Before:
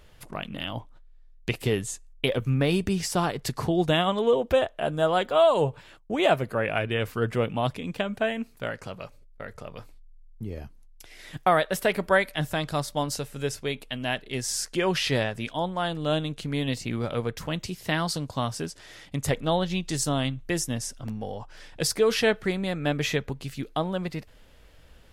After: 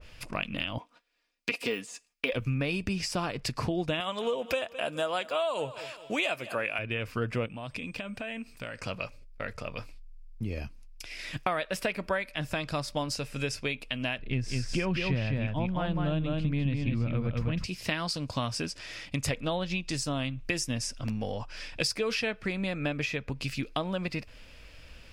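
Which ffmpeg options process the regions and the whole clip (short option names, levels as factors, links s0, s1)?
-filter_complex "[0:a]asettb=1/sr,asplit=3[s0][s1][s2];[s0]atrim=end=0.784[s3];[s1]atrim=start=0.78:end=2.33,asetpts=PTS-STARTPTS,afade=t=in:d=0.004:c=qsin,afade=t=out:st=1.546:d=0.004:c=qsin,deesser=0.9,highpass=300,aecho=1:1:4.2:0.57,atrim=end_sample=68355[s4];[s2]atrim=start=2.326[s5];[s3][s4]acrossfade=d=0.004:c1=hsin:c2=qsin[s6];[s6][s5]acrossfade=d=0.004:c1=qsin:c2=hsin,asettb=1/sr,asplit=3[s7][s8][s9];[s7]atrim=end=4.004[s10];[s8]atrim=start=4:end=6.79,asetpts=PTS-STARTPTS,afade=t=in:d=0.004:c=qsin,afade=t=out:st=2.786:d=0.004:c=qsin,highpass=f=390:p=1,highshelf=f=5000:g=11.5,aecho=1:1:210|420|630:0.0944|0.0415|0.0183,atrim=end_sample=123039[s11];[s9]atrim=start=6.786[s12];[s10][s11]acrossfade=d=0.004:c1=hsin:c2=qsin[s13];[s13][s12]acrossfade=d=0.004:c1=qsin:c2=hsin,asettb=1/sr,asplit=3[s14][s15][s16];[s14]atrim=end=7.464[s17];[s15]atrim=start=7.46:end=8.8,asetpts=PTS-STARTPTS,afade=t=in:d=0.004:c=qsin,afade=t=out:st=1.336:d=0.004:c=qsin,acompressor=threshold=0.0126:ratio=5:attack=3.2:release=140:knee=1:detection=peak,aeval=exprs='val(0)+0.000282*sin(2*PI*8400*n/s)':c=same[s18];[s16]atrim=start=8.796[s19];[s17][s18]acrossfade=d=0.004:c1=hsin:c2=qsin[s20];[s20][s19]acrossfade=d=0.004:c1=qsin:c2=hsin,asettb=1/sr,asplit=3[s21][s22][s23];[s21]atrim=end=14.194[s24];[s22]atrim=start=14.19:end=17.64,asetpts=PTS-STARTPTS,afade=t=in:d=0.004:c=qsin,afade=t=out:st=3.446:d=0.004:c=qsin,bass=f=250:g=14,treble=f=4000:g=-12,aecho=1:1:204:0.668,atrim=end_sample=152145[s25];[s23]atrim=start=17.636[s26];[s24][s25]acrossfade=d=0.004:c1=hsin:c2=qsin[s27];[s27][s26]acrossfade=d=0.004:c1=qsin:c2=hsin,equalizer=f=160:t=o:w=0.33:g=-4,equalizer=f=400:t=o:w=0.33:g=-6,equalizer=f=800:t=o:w=0.33:g=-5,equalizer=f=2500:t=o:w=0.33:g=11,equalizer=f=5000:t=o:w=0.33:g=8,equalizer=f=12500:t=o:w=0.33:g=-8,acompressor=threshold=0.0316:ratio=5,adynamicequalizer=threshold=0.00501:dfrequency=1800:dqfactor=0.7:tfrequency=1800:tqfactor=0.7:attack=5:release=100:ratio=0.375:range=2.5:mode=cutabove:tftype=highshelf,volume=1.41"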